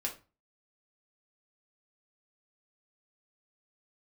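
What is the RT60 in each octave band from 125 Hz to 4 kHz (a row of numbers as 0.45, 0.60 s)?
0.45, 0.40, 0.30, 0.30, 0.30, 0.25 s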